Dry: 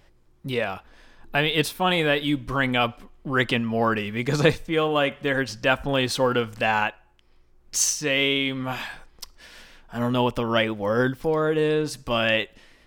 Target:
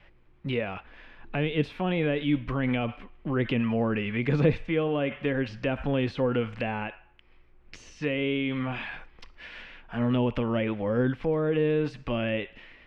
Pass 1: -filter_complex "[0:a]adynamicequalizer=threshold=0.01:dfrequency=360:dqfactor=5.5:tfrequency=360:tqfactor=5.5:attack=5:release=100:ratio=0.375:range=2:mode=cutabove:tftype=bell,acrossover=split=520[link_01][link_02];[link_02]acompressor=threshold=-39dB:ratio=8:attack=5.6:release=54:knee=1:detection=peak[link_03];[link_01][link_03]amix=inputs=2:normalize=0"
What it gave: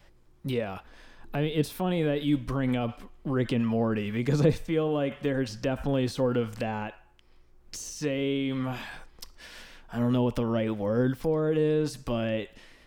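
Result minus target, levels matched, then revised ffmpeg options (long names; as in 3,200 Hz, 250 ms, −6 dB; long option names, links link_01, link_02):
2,000 Hz band −5.0 dB
-filter_complex "[0:a]adynamicequalizer=threshold=0.01:dfrequency=360:dqfactor=5.5:tfrequency=360:tqfactor=5.5:attack=5:release=100:ratio=0.375:range=2:mode=cutabove:tftype=bell,acrossover=split=520[link_01][link_02];[link_02]acompressor=threshold=-39dB:ratio=8:attack=5.6:release=54:knee=1:detection=peak,lowpass=frequency=2500:width_type=q:width=2.2[link_03];[link_01][link_03]amix=inputs=2:normalize=0"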